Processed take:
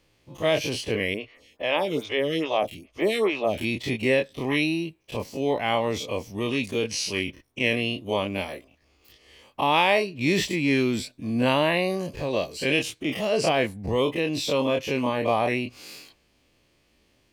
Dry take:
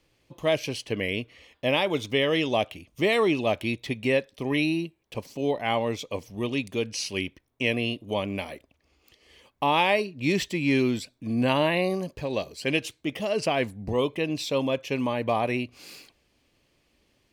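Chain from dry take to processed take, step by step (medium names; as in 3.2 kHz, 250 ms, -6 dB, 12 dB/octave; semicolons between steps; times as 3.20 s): every event in the spectrogram widened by 60 ms; 1.14–3.58 s: lamp-driven phase shifter 2.4 Hz; trim -1 dB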